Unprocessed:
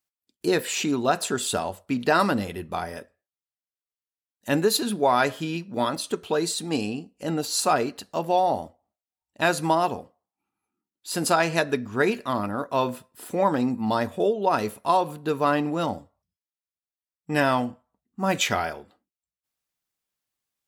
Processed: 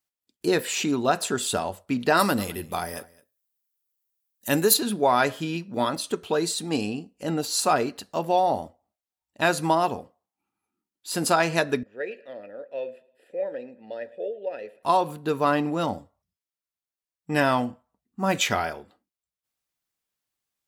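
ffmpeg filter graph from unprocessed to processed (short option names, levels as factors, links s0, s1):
-filter_complex "[0:a]asettb=1/sr,asplit=3[s0][s1][s2];[s0]atrim=end=2.174[s3];[s1]atrim=start=2.17:end=4.74,asetpts=PTS-STARTPTS,afade=t=in:d=0.004:c=qsin,afade=t=out:st=2.566:d=0.004:c=qsin,aemphasis=mode=production:type=50fm,aecho=1:1:212:0.075,atrim=end_sample=113337[s4];[s2]atrim=start=4.736[s5];[s3][s4]acrossfade=d=0.004:c1=hsin:c2=qsin[s6];[s6][s5]acrossfade=d=0.004:c1=qsin:c2=hsin,asettb=1/sr,asplit=3[s7][s8][s9];[s7]atrim=end=11.834[s10];[s8]atrim=start=11.83:end=14.83,asetpts=PTS-STARTPTS,afade=t=in:d=0.004:c=qsin,afade=t=out:st=2.996:d=0.004:c=qsin,asplit=3[s11][s12][s13];[s11]bandpass=f=530:t=q:w=8,volume=1[s14];[s12]bandpass=f=1840:t=q:w=8,volume=0.501[s15];[s13]bandpass=f=2480:t=q:w=8,volume=0.355[s16];[s14][s15][s16]amix=inputs=3:normalize=0,bandreject=f=6300:w=6.9,aecho=1:1:111|222|333:0.0708|0.0319|0.0143,atrim=end_sample=132300[s17];[s9]atrim=start=14.826[s18];[s10][s17]acrossfade=d=0.004:c1=hsin:c2=qsin[s19];[s19][s18]acrossfade=d=0.004:c1=qsin:c2=hsin"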